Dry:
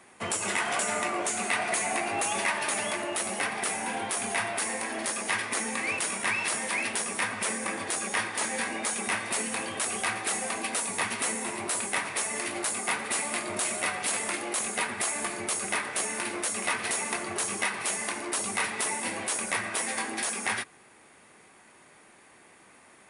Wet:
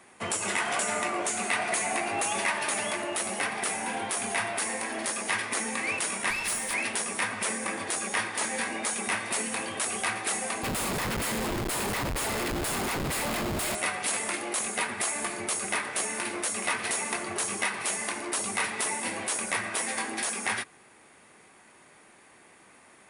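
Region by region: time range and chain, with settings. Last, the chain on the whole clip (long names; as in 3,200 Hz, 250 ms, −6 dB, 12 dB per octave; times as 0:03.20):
0:06.30–0:06.74: high-shelf EQ 5,000 Hz +6.5 dB + tube saturation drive 23 dB, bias 0.55
0:10.63–0:13.75: high-shelf EQ 8,100 Hz +4.5 dB + comparator with hysteresis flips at −30 dBFS + notch filter 5,900 Hz, Q 13
whole clip: no processing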